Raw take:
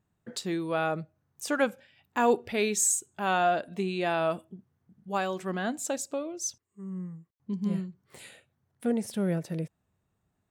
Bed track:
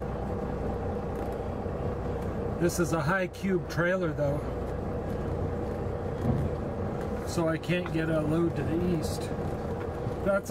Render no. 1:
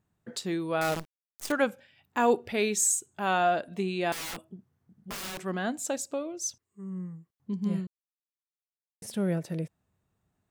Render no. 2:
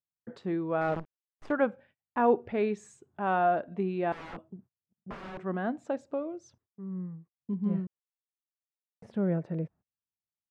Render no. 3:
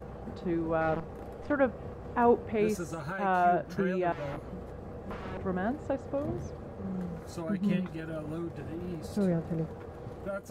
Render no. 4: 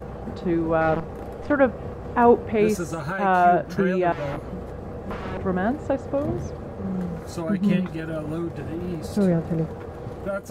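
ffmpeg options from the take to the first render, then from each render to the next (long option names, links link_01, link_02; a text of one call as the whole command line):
ffmpeg -i in.wav -filter_complex "[0:a]asettb=1/sr,asplit=3[link_01][link_02][link_03];[link_01]atrim=end=0.814[link_04];[link_02]atrim=start=0.81:end=1.52,asetpts=PTS-STARTPTS,afade=type=in:duration=0.004:curve=qsin,afade=type=out:start_time=0.706:duration=0.004:curve=qsin,acrusher=bits=6:dc=4:mix=0:aa=0.000001[link_05];[link_03]atrim=start=1.516[link_06];[link_04][link_05]acrossfade=duration=0.004:curve1=hsin:curve2=qsin[link_07];[link_07][link_06]acrossfade=duration=0.004:curve1=qsin:curve2=hsin,asettb=1/sr,asplit=3[link_08][link_09][link_10];[link_08]atrim=end=4.124[link_11];[link_09]atrim=start=4.12:end=5.4,asetpts=PTS-STARTPTS,afade=type=in:duration=0.004:curve=qsin,afade=type=out:start_time=1.276:duration=0.004:curve=qsin,aeval=exprs='(mod(42.2*val(0)+1,2)-1)/42.2':channel_layout=same[link_12];[link_10]atrim=start=5.396[link_13];[link_11][link_12]acrossfade=duration=0.004:curve1=hsin:curve2=qsin[link_14];[link_14][link_13]acrossfade=duration=0.004:curve1=qsin:curve2=hsin,asplit=3[link_15][link_16][link_17];[link_15]atrim=end=7.87,asetpts=PTS-STARTPTS,afade=type=out:start_time=7.866:duration=0.004:curve=hsin[link_18];[link_16]atrim=start=7.87:end=9.02,asetpts=PTS-STARTPTS,volume=0[link_19];[link_17]atrim=start=9.02,asetpts=PTS-STARTPTS,afade=type=in:duration=0.004:curve=hsin[link_20];[link_18][link_19][link_20]concat=n=3:v=0:a=1" out.wav
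ffmpeg -i in.wav -af "agate=range=-32dB:threshold=-53dB:ratio=16:detection=peak,lowpass=1400" out.wav
ffmpeg -i in.wav -i bed.wav -filter_complex "[1:a]volume=-10dB[link_01];[0:a][link_01]amix=inputs=2:normalize=0" out.wav
ffmpeg -i in.wav -af "volume=8dB" out.wav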